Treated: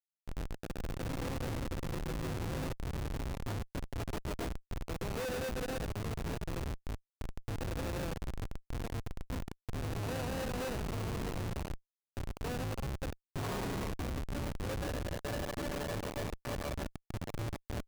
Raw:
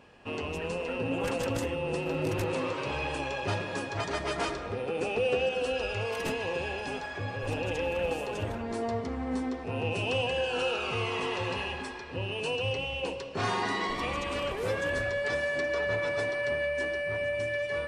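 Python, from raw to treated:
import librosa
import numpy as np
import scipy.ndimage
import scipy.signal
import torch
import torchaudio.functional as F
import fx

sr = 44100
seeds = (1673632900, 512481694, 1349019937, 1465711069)

y = fx.schmitt(x, sr, flips_db=-26.5)
y = F.gain(torch.from_numpy(y), -4.5).numpy()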